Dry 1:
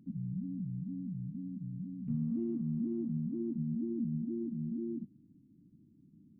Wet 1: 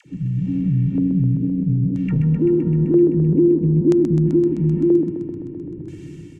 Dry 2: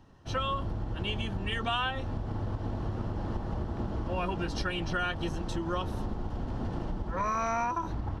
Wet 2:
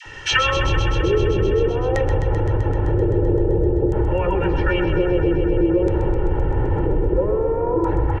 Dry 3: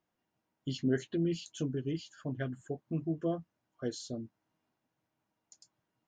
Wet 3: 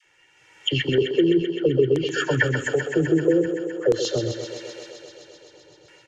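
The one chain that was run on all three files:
level rider gain up to 12 dB; low-pass that closes with the level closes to 620 Hz, closed at -18.5 dBFS; bass shelf 460 Hz -5.5 dB; phase dispersion lows, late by 60 ms, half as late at 700 Hz; peak limiter -22.5 dBFS; high-order bell 2.2 kHz +13 dB 1.2 oct; comb 2.2 ms, depth 93%; LFO low-pass square 0.51 Hz 450–7100 Hz; compression 2:1, threshold -41 dBFS; thinning echo 129 ms, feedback 82%, high-pass 180 Hz, level -8 dB; peak normalisation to -6 dBFS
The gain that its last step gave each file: +21.0 dB, +17.0 dB, +15.0 dB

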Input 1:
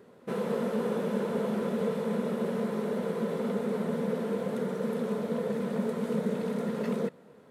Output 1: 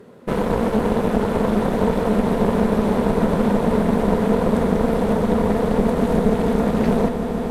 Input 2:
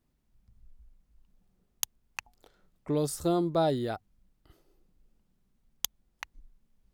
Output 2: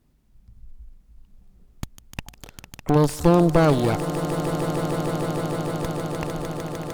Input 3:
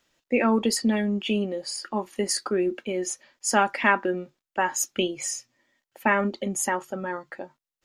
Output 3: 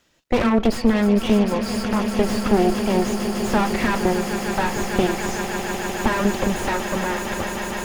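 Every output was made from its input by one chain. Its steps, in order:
compression 1.5:1, threshold -30 dBFS; Chebyshev shaper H 6 -21 dB, 8 -11 dB, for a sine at -10 dBFS; bass shelf 320 Hz +5 dB; echo with a slow build-up 151 ms, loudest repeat 8, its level -15 dB; slew-rate limiter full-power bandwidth 73 Hz; peak normalisation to -3 dBFS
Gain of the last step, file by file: +8.0 dB, +8.0 dB, +5.5 dB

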